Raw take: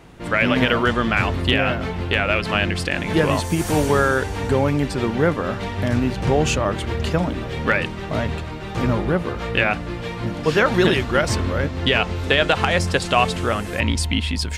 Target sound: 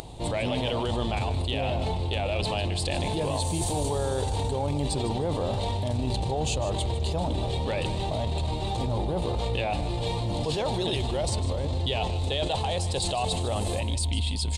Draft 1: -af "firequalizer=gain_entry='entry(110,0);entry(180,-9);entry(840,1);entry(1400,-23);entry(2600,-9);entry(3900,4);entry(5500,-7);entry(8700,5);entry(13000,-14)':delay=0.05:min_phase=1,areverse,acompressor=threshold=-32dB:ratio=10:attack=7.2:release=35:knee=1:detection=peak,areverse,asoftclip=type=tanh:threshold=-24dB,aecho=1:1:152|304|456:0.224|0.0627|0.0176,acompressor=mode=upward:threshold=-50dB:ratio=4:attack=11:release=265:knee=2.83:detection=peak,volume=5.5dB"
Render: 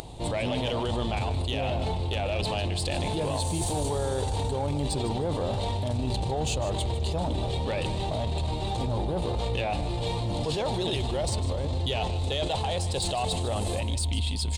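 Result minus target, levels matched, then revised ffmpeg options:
soft clipping: distortion +13 dB
-af "firequalizer=gain_entry='entry(110,0);entry(180,-9);entry(840,1);entry(1400,-23);entry(2600,-9);entry(3900,4);entry(5500,-7);entry(8700,5);entry(13000,-14)':delay=0.05:min_phase=1,areverse,acompressor=threshold=-32dB:ratio=10:attack=7.2:release=35:knee=1:detection=peak,areverse,asoftclip=type=tanh:threshold=-16.5dB,aecho=1:1:152|304|456:0.224|0.0627|0.0176,acompressor=mode=upward:threshold=-50dB:ratio=4:attack=11:release=265:knee=2.83:detection=peak,volume=5.5dB"

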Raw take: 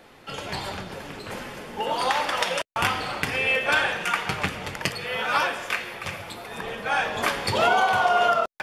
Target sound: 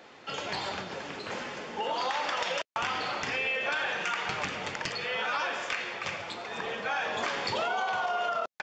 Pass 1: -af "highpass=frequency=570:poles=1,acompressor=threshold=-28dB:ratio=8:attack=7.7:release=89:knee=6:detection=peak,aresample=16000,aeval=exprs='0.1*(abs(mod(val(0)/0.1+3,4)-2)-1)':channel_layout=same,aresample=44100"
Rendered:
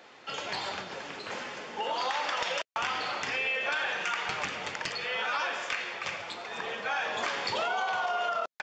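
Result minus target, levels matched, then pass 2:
250 Hz band −3.5 dB
-af "highpass=frequency=280:poles=1,acompressor=threshold=-28dB:ratio=8:attack=7.7:release=89:knee=6:detection=peak,aresample=16000,aeval=exprs='0.1*(abs(mod(val(0)/0.1+3,4)-2)-1)':channel_layout=same,aresample=44100"

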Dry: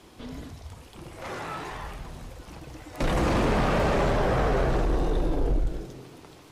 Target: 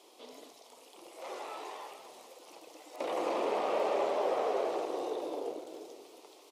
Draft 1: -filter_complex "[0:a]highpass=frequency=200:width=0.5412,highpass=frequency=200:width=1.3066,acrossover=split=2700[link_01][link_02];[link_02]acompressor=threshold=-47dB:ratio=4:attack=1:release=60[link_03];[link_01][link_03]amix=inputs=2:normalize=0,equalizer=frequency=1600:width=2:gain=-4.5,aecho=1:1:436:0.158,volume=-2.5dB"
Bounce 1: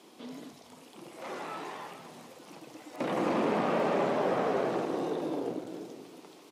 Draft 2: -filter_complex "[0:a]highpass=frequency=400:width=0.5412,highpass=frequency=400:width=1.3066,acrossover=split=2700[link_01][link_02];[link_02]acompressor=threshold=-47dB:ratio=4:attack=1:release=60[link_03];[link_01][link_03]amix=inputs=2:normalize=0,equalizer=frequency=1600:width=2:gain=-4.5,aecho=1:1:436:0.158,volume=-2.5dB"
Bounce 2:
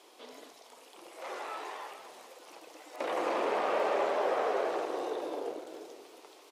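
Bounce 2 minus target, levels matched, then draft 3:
2,000 Hz band +5.0 dB
-filter_complex "[0:a]highpass=frequency=400:width=0.5412,highpass=frequency=400:width=1.3066,acrossover=split=2700[link_01][link_02];[link_02]acompressor=threshold=-47dB:ratio=4:attack=1:release=60[link_03];[link_01][link_03]amix=inputs=2:normalize=0,equalizer=frequency=1600:width=2:gain=-14.5,aecho=1:1:436:0.158,volume=-2.5dB"

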